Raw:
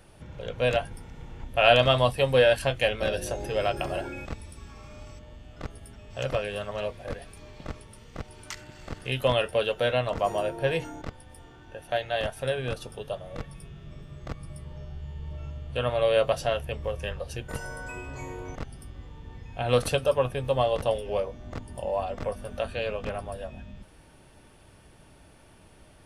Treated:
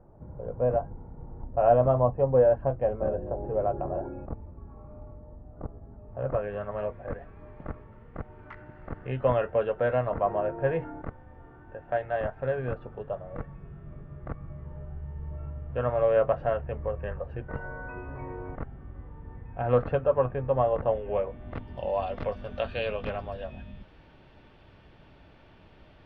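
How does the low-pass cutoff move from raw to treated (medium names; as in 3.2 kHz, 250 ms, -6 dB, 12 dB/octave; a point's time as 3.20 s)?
low-pass 24 dB/octave
6.04 s 1 kHz
6.54 s 1.7 kHz
20.85 s 1.7 kHz
21.91 s 3.9 kHz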